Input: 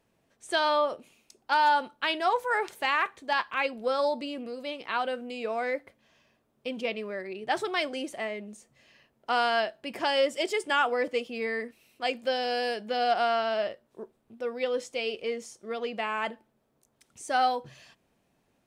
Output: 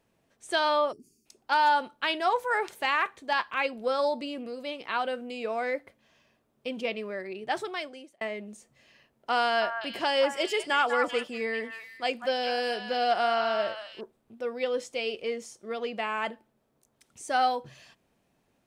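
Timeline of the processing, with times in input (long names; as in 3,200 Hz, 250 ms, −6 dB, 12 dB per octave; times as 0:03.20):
0:00.92–0:01.26: gain on a spectral selection 440–4,400 Hz −28 dB
0:07.37–0:08.21: fade out
0:09.42–0:14.01: echo through a band-pass that steps 195 ms, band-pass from 1,200 Hz, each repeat 1.4 octaves, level −3 dB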